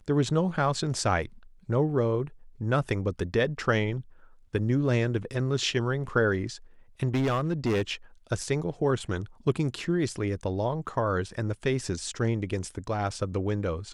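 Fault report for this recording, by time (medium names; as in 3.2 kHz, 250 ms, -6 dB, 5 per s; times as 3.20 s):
7.14–7.91 s: clipped -22 dBFS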